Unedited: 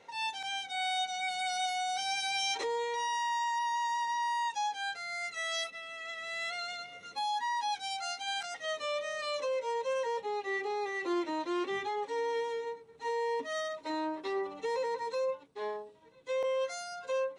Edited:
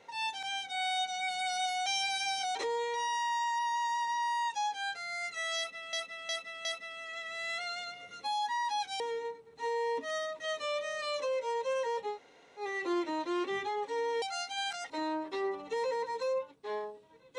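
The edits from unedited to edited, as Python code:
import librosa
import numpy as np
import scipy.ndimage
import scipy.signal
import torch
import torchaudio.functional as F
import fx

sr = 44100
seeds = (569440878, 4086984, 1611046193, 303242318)

y = fx.edit(x, sr, fx.reverse_span(start_s=1.86, length_s=0.69),
    fx.repeat(start_s=5.57, length_s=0.36, count=4),
    fx.swap(start_s=7.92, length_s=0.68, other_s=12.42, other_length_s=1.4),
    fx.room_tone_fill(start_s=10.34, length_s=0.47, crossfade_s=0.1), tone=tone)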